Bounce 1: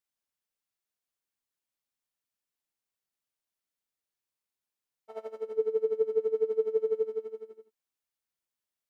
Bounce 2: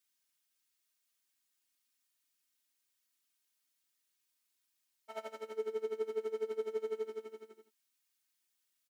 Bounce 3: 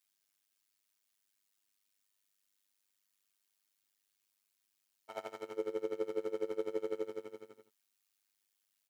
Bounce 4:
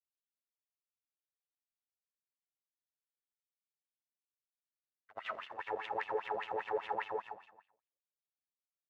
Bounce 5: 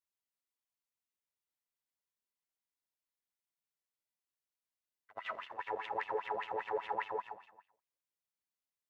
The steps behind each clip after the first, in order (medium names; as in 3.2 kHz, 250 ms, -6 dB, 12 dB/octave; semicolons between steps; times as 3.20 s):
high-pass 320 Hz 6 dB/octave; peaking EQ 620 Hz -11.5 dB 2.1 oct; comb 3.2 ms, depth 100%; trim +6.5 dB
AM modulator 100 Hz, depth 80%; trim +4 dB
algorithmic reverb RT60 0.8 s, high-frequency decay 0.55×, pre-delay 60 ms, DRR -6 dB; Chebyshev shaper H 5 -25 dB, 6 -7 dB, 7 -15 dB, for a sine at -21 dBFS; wah-wah 5 Hz 480–3200 Hz, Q 5.2; trim +2 dB
small resonant body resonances 990/2000 Hz, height 7 dB; trim -1 dB